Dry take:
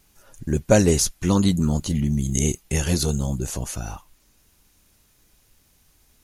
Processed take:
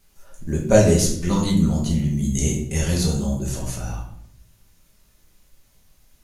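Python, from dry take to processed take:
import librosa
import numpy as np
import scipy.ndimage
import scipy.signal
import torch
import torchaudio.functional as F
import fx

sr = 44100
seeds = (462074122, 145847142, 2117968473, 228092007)

y = fx.room_shoebox(x, sr, seeds[0], volume_m3=130.0, walls='mixed', distance_m=1.2)
y = F.gain(torch.from_numpy(y), -4.5).numpy()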